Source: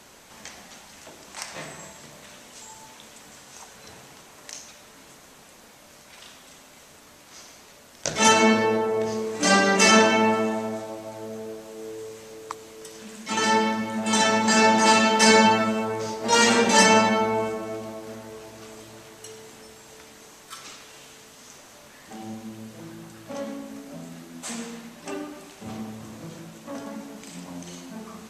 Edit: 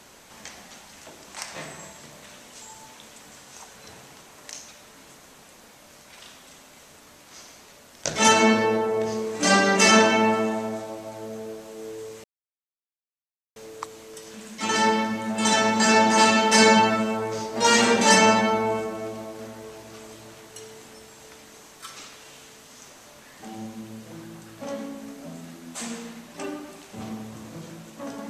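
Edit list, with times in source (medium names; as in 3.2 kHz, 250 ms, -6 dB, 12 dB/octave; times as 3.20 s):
12.24 s: insert silence 1.32 s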